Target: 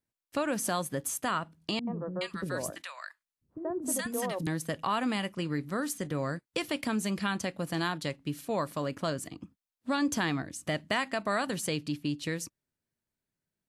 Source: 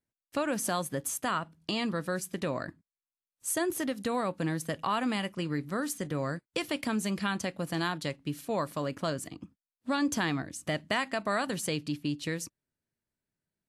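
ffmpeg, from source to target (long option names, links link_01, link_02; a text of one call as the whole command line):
ffmpeg -i in.wav -filter_complex "[0:a]asettb=1/sr,asplit=3[link_01][link_02][link_03];[link_01]atrim=end=1.794[link_04];[link_02]atrim=start=1.79:end=4.47,asetpts=PTS-STARTPTS,afade=type=in:duration=0.004:curve=qsin,afade=type=out:start_time=2.676:duration=0.004:curve=qsin,acrossover=split=300|1000[link_05][link_06][link_07];[link_06]adelay=80[link_08];[link_07]adelay=420[link_09];[link_05][link_08][link_09]amix=inputs=3:normalize=0,atrim=end_sample=118188[link_10];[link_03]atrim=start=4.466[link_11];[link_04][link_10]acrossfade=duration=0.004:curve1=hsin:curve2=qsin[link_12];[link_12][link_11]acrossfade=duration=0.004:curve1=qsin:curve2=hsin" out.wav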